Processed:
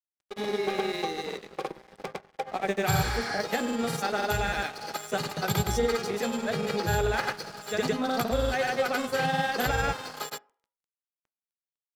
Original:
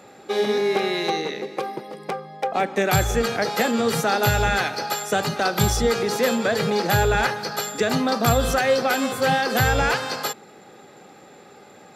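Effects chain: grains 0.1 s, grains 20/s, pitch spread up and down by 0 st; crossover distortion -37.5 dBFS; spectral repair 2.95–3.36, 800–11000 Hz both; on a send: reverb RT60 0.45 s, pre-delay 3 ms, DRR 16 dB; on the sum: gain -5 dB

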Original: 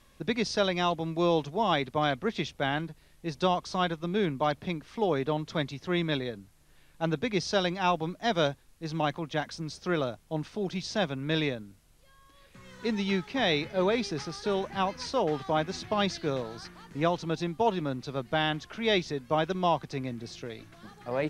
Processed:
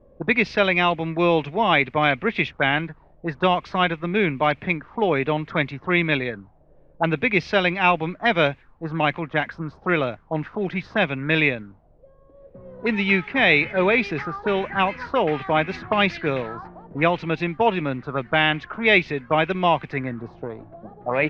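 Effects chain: envelope low-pass 510–2400 Hz up, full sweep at -27.5 dBFS; gain +6 dB

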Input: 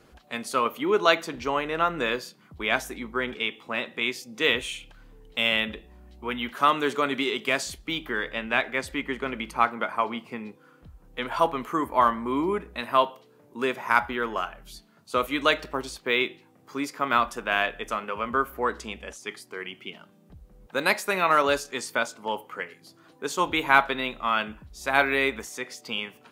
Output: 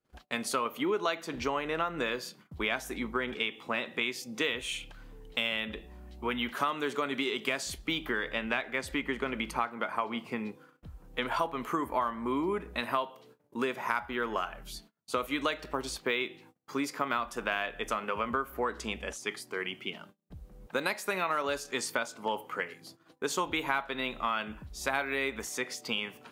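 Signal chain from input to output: gate -53 dBFS, range -32 dB; compressor 6:1, threshold -29 dBFS, peak gain reduction 15.5 dB; gain +1.5 dB

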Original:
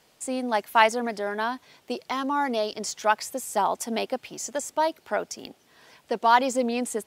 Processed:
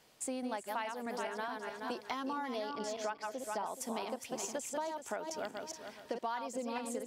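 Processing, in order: regenerating reverse delay 0.212 s, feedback 47%, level -5.5 dB; 2.69–3.66 high shelf 5400 Hz -11 dB; compressor 10:1, threshold -31 dBFS, peak gain reduction 19 dB; gain -4 dB

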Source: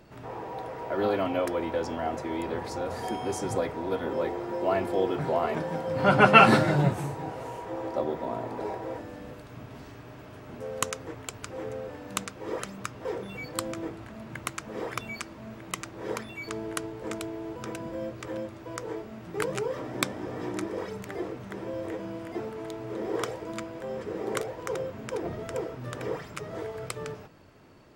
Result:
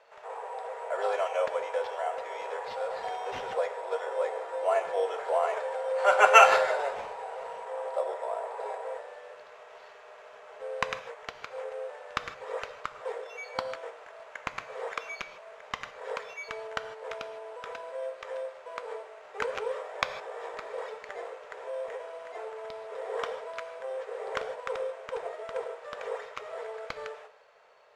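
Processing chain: steep high-pass 450 Hz 72 dB/oct; sample-and-hold 5×; LPF 4000 Hz 12 dB/oct; on a send: reverb, pre-delay 3 ms, DRR 10 dB

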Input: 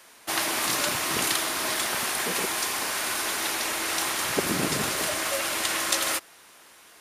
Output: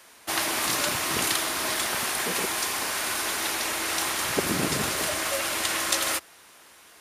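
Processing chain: bell 74 Hz +4.5 dB 0.99 oct

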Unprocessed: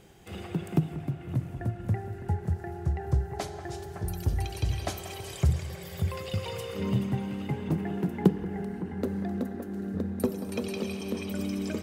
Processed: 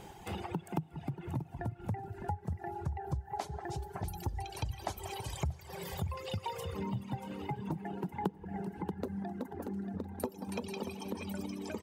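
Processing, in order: bell 890 Hz +13.5 dB 0.37 oct; feedback echo 0.633 s, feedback 29%, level -10 dB; compressor 3:1, threshold -40 dBFS, peak gain reduction 19 dB; reverb removal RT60 1.7 s; gain +4 dB

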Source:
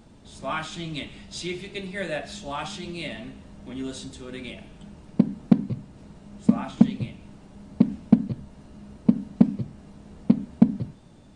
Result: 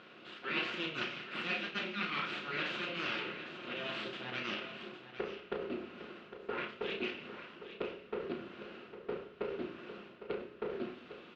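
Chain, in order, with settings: low shelf 490 Hz -11.5 dB; reverse; compressor 6:1, threshold -39 dBFS, peak gain reduction 19.5 dB; reverse; full-wave rectifier; speaker cabinet 200–3600 Hz, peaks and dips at 220 Hz +6 dB, 350 Hz +6 dB, 850 Hz -7 dB, 1400 Hz +7 dB, 2700 Hz +8 dB; doubler 33 ms -7 dB; on a send: echo 0.806 s -11.5 dB; on the sum: shoebox room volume 1900 m³, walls furnished, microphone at 0.93 m; gain +6.5 dB

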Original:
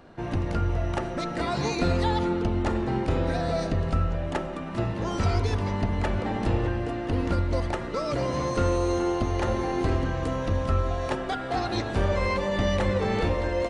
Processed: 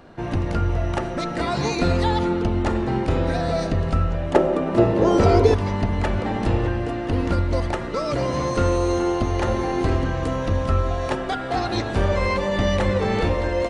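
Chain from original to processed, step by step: 4.34–5.54 bell 450 Hz +13.5 dB 1.6 oct; gain +4 dB

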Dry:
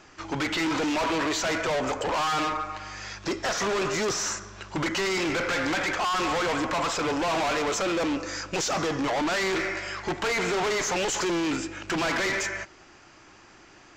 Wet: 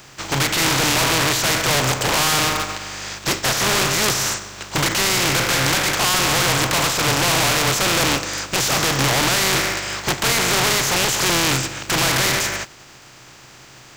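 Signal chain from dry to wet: spectral contrast lowered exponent 0.4; bell 130 Hz +14.5 dB 0.26 oct; gain +8 dB

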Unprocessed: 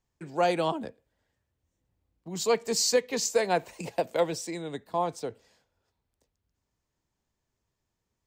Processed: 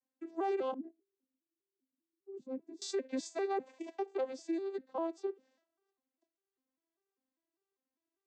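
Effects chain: arpeggiated vocoder major triad, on C4, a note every 0.199 s; 0.74–2.82 EQ curve 350 Hz 0 dB, 610 Hz -17 dB, 3700 Hz -28 dB; limiter -22 dBFS, peak gain reduction 10.5 dB; gain -5 dB

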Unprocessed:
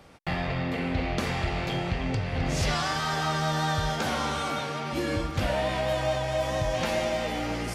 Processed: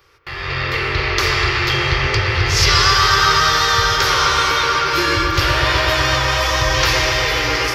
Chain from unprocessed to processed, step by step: EQ curve 130 Hz 0 dB, 200 Hz -29 dB, 390 Hz +5 dB, 690 Hz -12 dB, 1100 Hz +6 dB, 3700 Hz +4 dB, 5300 Hz +9 dB, 8800 Hz -5 dB, 14000 Hz +12 dB; AGC gain up to 13 dB; on a send: dark delay 0.124 s, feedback 83%, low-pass 2400 Hz, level -4 dB; on the sum: dynamic EQ 4800 Hz, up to +5 dB, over -30 dBFS, Q 0.94; gain -3 dB

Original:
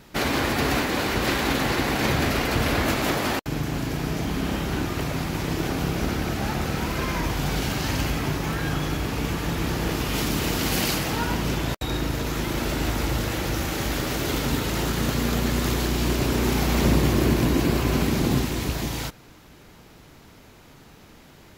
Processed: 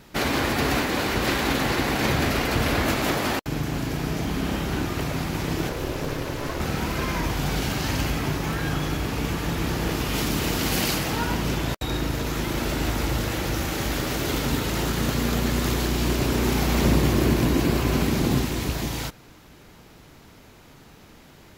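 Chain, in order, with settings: 5.69–6.6 ring modulator 210 Hz

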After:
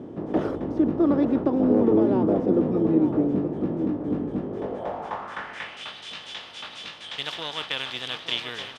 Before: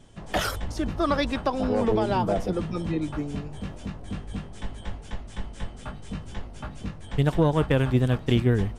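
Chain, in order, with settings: per-bin compression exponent 0.6; outdoor echo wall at 150 m, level -8 dB; band-pass sweep 310 Hz -> 3400 Hz, 4.46–5.9; gain +6.5 dB

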